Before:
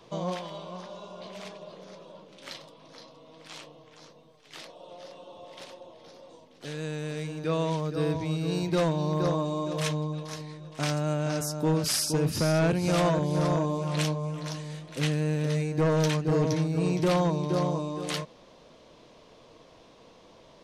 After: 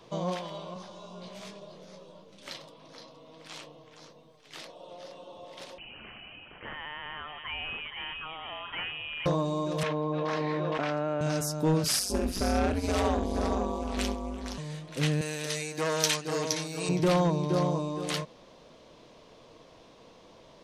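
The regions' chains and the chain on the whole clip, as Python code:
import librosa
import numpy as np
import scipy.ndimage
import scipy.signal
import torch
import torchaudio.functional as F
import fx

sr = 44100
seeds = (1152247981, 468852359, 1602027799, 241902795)

y = fx.chain(x, sr, fx.bass_treble(bass_db=5, treble_db=5),
    fx.detune_double(cents=10), at=(0.74, 2.48))
y = fx.chain(y, sr, fx.highpass(hz=1200.0, slope=12),
    fx.freq_invert(carrier_hz=3500),
    fx.env_flatten(amount_pct=50), at=(5.78, 9.26))
y = fx.chain(y, sr, fx.bandpass_edges(low_hz=290.0, high_hz=2100.0),
    fx.env_flatten(amount_pct=100), at=(9.83, 11.21))
y = fx.chain(y, sr, fx.ring_mod(carrier_hz=97.0),
    fx.echo_feedback(ms=67, feedback_pct=34, wet_db=-14.5), at=(11.99, 14.58))
y = fx.chain(y, sr, fx.highpass(hz=710.0, slope=6),
    fx.high_shelf(hz=3000.0, db=12.0), at=(15.21, 16.89))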